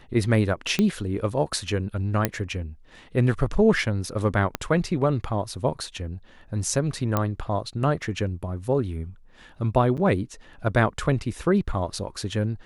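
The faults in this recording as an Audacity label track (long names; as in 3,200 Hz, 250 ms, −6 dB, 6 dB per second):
0.790000	0.790000	click −10 dBFS
2.250000	2.250000	click −6 dBFS
4.550000	4.550000	click −10 dBFS
7.170000	7.170000	click −9 dBFS
9.970000	9.980000	drop-out 7.5 ms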